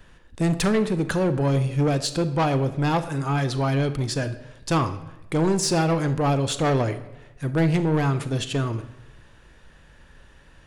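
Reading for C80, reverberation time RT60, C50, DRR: 15.5 dB, 0.95 s, 13.0 dB, 11.0 dB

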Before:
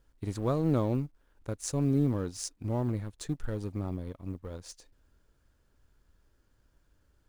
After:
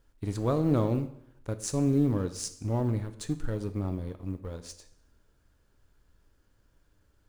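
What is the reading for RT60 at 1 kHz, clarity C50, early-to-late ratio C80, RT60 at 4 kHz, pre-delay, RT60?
0.80 s, 14.0 dB, 16.0 dB, 0.70 s, 5 ms, 0.75 s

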